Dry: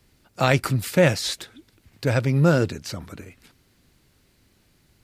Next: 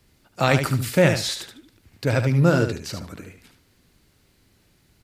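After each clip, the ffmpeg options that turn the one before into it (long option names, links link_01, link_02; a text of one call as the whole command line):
ffmpeg -i in.wav -af "aecho=1:1:74|148|222:0.422|0.0759|0.0137" out.wav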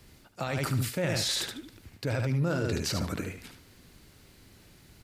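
ffmpeg -i in.wav -af "areverse,acompressor=threshold=-27dB:ratio=10,areverse,alimiter=level_in=1.5dB:limit=-24dB:level=0:latency=1:release=20,volume=-1.5dB,volume=5dB" out.wav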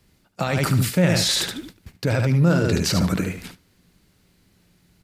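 ffmpeg -i in.wav -af "agate=range=-14dB:threshold=-48dB:ratio=16:detection=peak,equalizer=frequency=180:width=6.1:gain=9.5,volume=8.5dB" out.wav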